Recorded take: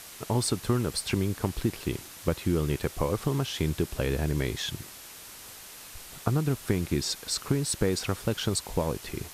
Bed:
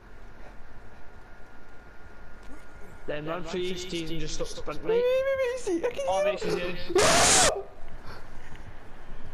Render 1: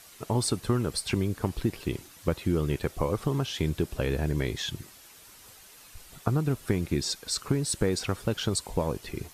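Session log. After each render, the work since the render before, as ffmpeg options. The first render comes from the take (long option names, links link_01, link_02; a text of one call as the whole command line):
ffmpeg -i in.wav -af "afftdn=noise_reduction=8:noise_floor=-46" out.wav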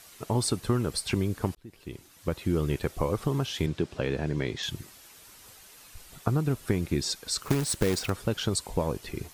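ffmpeg -i in.wav -filter_complex "[0:a]asettb=1/sr,asplit=3[link_01][link_02][link_03];[link_01]atrim=end=3.664[link_04];[link_02]atrim=start=3.66:end=4.63,asetpts=PTS-STARTPTS,afade=type=in:duration=0.004:curve=qsin,afade=type=out:start_time=0.966:duration=0.004:curve=qsin,highpass=110,lowpass=5600[link_05];[link_03]atrim=start=4.626[link_06];[link_04][link_05]acrossfade=duration=0.004:curve1=hsin:curve2=qsin[link_07];[link_07][link_06]acrossfade=duration=0.004:curve1=qsin:curve2=hsin,asettb=1/sr,asplit=3[link_08][link_09][link_10];[link_08]atrim=end=7.424[link_11];[link_09]atrim=start=7.42:end=8.1,asetpts=PTS-STARTPTS,afade=type=in:duration=0.004:curve=qsin,afade=type=out:start_time=0.676:duration=0.004:curve=qsin,acrusher=bits=2:mode=log:mix=0:aa=0.000001[link_12];[link_10]atrim=start=8.096[link_13];[link_11][link_12]acrossfade=duration=0.004:curve1=hsin:curve2=qsin[link_14];[link_14][link_13]acrossfade=duration=0.004:curve1=qsin:curve2=hsin,asplit=2[link_15][link_16];[link_15]atrim=end=1.55,asetpts=PTS-STARTPTS,afade=type=out:start_time=1.546:duration=0.004:curve=hsin[link_17];[link_16]atrim=start=1.55,asetpts=PTS-STARTPTS,afade=type=in:duration=1.02[link_18];[link_17][link_18]concat=n=2:v=0:a=1" out.wav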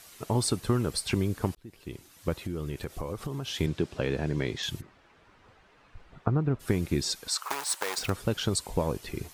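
ffmpeg -i in.wav -filter_complex "[0:a]asettb=1/sr,asplit=3[link_01][link_02][link_03];[link_01]atrim=end=2.464[link_04];[link_02]atrim=start=2.46:end=3.47,asetpts=PTS-STARTPTS,afade=type=in:duration=0.004:curve=qsin,afade=type=out:start_time=1.006:duration=0.004:curve=qsin,acompressor=threshold=-32dB:ratio=3:attack=3.2:release=140:knee=1:detection=peak[link_05];[link_03]atrim=start=3.466[link_06];[link_04][link_05]acrossfade=duration=0.004:curve1=hsin:curve2=qsin[link_07];[link_07][link_06]acrossfade=duration=0.004:curve1=qsin:curve2=hsin,asplit=3[link_08][link_09][link_10];[link_08]afade=type=out:start_time=4.8:duration=0.02[link_11];[link_09]lowpass=1800,afade=type=in:start_time=4.8:duration=0.02,afade=type=out:start_time=6.59:duration=0.02[link_12];[link_10]afade=type=in:start_time=6.59:duration=0.02[link_13];[link_11][link_12][link_13]amix=inputs=3:normalize=0,asettb=1/sr,asplit=3[link_14][link_15][link_16];[link_14]atrim=end=7.284[link_17];[link_15]atrim=start=7.28:end=7.98,asetpts=PTS-STARTPTS,afade=type=in:duration=0.004:curve=qsin,afade=type=out:start_time=0.696:duration=0.004:curve=qsin,highpass=frequency=900:width_type=q:width=2.5[link_18];[link_16]atrim=start=7.976[link_19];[link_17][link_18]acrossfade=duration=0.004:curve1=hsin:curve2=qsin[link_20];[link_20][link_19]acrossfade=duration=0.004:curve1=qsin:curve2=hsin" out.wav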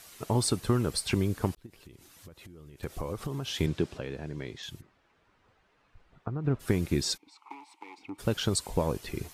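ffmpeg -i in.wav -filter_complex "[0:a]asettb=1/sr,asplit=3[link_01][link_02][link_03];[link_01]atrim=end=1.664[link_04];[link_02]atrim=start=1.66:end=2.83,asetpts=PTS-STARTPTS,afade=type=in:duration=0.004:curve=qsin,afade=type=out:start_time=1.166:duration=0.004:curve=qsin,acompressor=threshold=-46dB:ratio=10:attack=3.2:release=140:knee=1:detection=peak[link_05];[link_03]atrim=start=2.826[link_06];[link_04][link_05]acrossfade=duration=0.004:curve1=hsin:curve2=qsin[link_07];[link_07][link_06]acrossfade=duration=0.004:curve1=qsin:curve2=hsin,asplit=3[link_08][link_09][link_10];[link_08]afade=type=out:start_time=7.16:duration=0.02[link_11];[link_09]asplit=3[link_12][link_13][link_14];[link_12]bandpass=frequency=300:width_type=q:width=8,volume=0dB[link_15];[link_13]bandpass=frequency=870:width_type=q:width=8,volume=-6dB[link_16];[link_14]bandpass=frequency=2240:width_type=q:width=8,volume=-9dB[link_17];[link_15][link_16][link_17]amix=inputs=3:normalize=0,afade=type=in:start_time=7.16:duration=0.02,afade=type=out:start_time=8.18:duration=0.02[link_18];[link_10]afade=type=in:start_time=8.18:duration=0.02[link_19];[link_11][link_18][link_19]amix=inputs=3:normalize=0,asplit=3[link_20][link_21][link_22];[link_20]atrim=end=4.12,asetpts=PTS-STARTPTS,afade=type=out:start_time=3.97:duration=0.15:curve=exp:silence=0.375837[link_23];[link_21]atrim=start=4.12:end=6.3,asetpts=PTS-STARTPTS,volume=-8.5dB[link_24];[link_22]atrim=start=6.3,asetpts=PTS-STARTPTS,afade=type=in:duration=0.15:curve=exp:silence=0.375837[link_25];[link_23][link_24][link_25]concat=n=3:v=0:a=1" out.wav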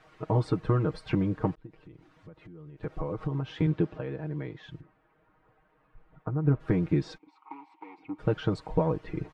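ffmpeg -i in.wav -af "lowpass=1600,aecho=1:1:6.4:0.84" out.wav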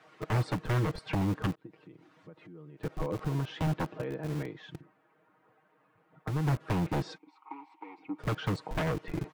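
ffmpeg -i in.wav -filter_complex "[0:a]acrossover=split=130[link_01][link_02];[link_01]acrusher=bits=6:mix=0:aa=0.000001[link_03];[link_02]aeval=exprs='0.0501*(abs(mod(val(0)/0.0501+3,4)-2)-1)':channel_layout=same[link_04];[link_03][link_04]amix=inputs=2:normalize=0" out.wav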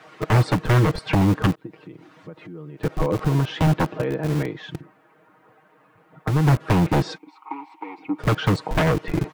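ffmpeg -i in.wav -af "volume=11.5dB" out.wav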